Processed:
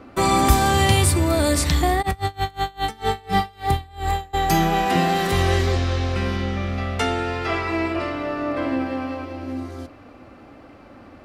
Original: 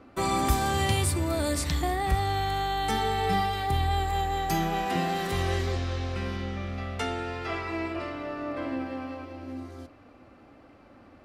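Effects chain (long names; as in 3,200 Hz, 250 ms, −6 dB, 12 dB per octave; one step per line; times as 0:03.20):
0:02.01–0:04.33: tremolo with a sine in dB 6.7 Hz → 2 Hz, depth 29 dB
level +8.5 dB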